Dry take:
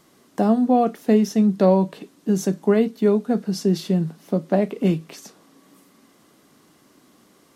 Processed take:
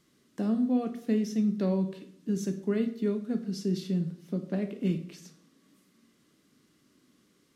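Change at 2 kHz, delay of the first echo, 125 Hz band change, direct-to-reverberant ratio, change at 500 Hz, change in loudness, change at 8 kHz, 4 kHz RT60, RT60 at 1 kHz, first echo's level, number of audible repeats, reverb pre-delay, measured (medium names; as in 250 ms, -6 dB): -10.5 dB, no echo, -8.5 dB, 8.5 dB, -13.5 dB, -10.0 dB, -10.5 dB, 0.50 s, 0.60 s, no echo, no echo, 18 ms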